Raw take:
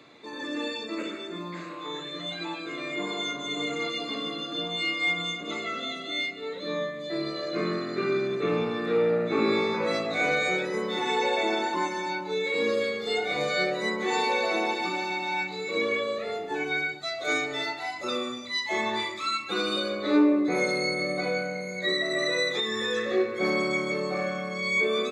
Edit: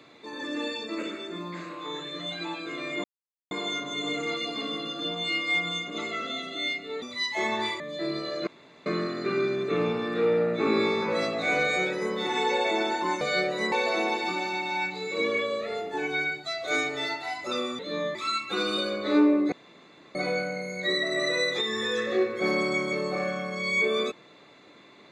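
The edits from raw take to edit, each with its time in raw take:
3.04 insert silence 0.47 s
6.55–6.91 swap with 18.36–19.14
7.58 insert room tone 0.39 s
11.93–13.44 cut
13.95–14.29 cut
20.51–21.14 room tone

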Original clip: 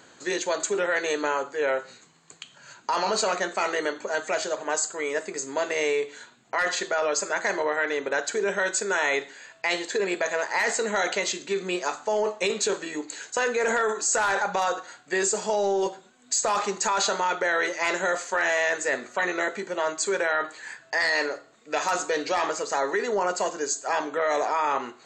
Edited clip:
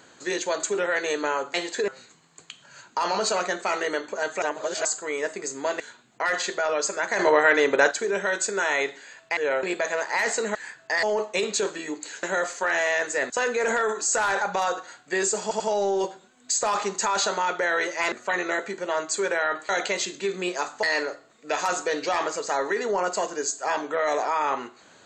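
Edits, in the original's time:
1.54–1.8 swap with 9.7–10.04
4.34–4.77 reverse
5.72–6.13 cut
7.52–8.24 gain +7.5 dB
10.96–12.1 swap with 20.58–21.06
15.42 stutter 0.09 s, 3 plays
17.94–19.01 move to 13.3

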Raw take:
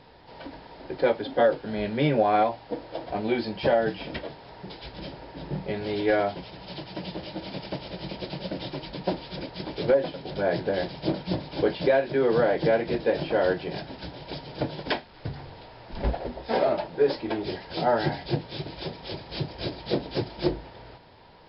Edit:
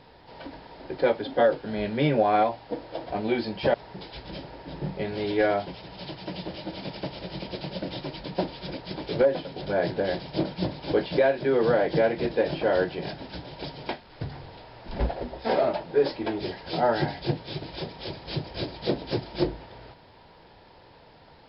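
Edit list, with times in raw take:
3.74–4.43 cut
14.58–14.93 cut

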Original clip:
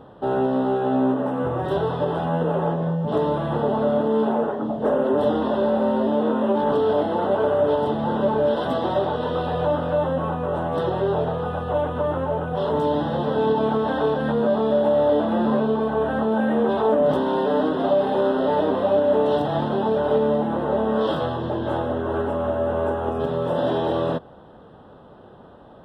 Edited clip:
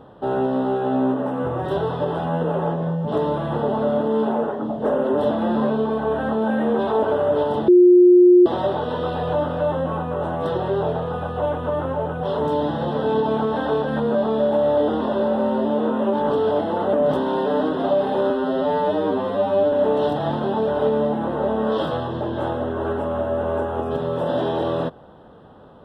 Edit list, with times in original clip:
5.31–7.35 swap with 15.21–16.93
8–8.78 bleep 357 Hz -7.5 dBFS
18.3–19.01 stretch 2×

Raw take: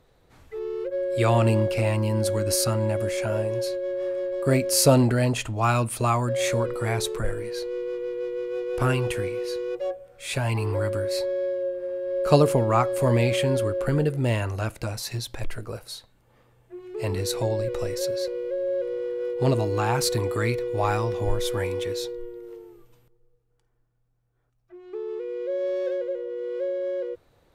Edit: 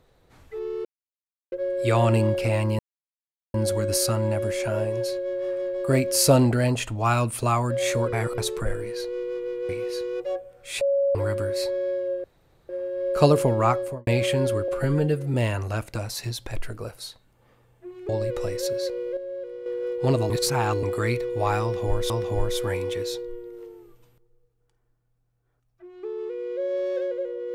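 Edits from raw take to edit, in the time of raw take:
0.85 insert silence 0.67 s
2.12 insert silence 0.75 s
6.71–6.96 reverse
8.27–9.24 cut
10.36–10.7 bleep 557 Hz -18.5 dBFS
11.79 insert room tone 0.45 s
12.82–13.17 studio fade out
13.78–14.22 stretch 1.5×
16.97–17.47 cut
18.55–19.04 gain -7.5 dB
19.68–20.21 reverse
21–21.48 loop, 2 plays

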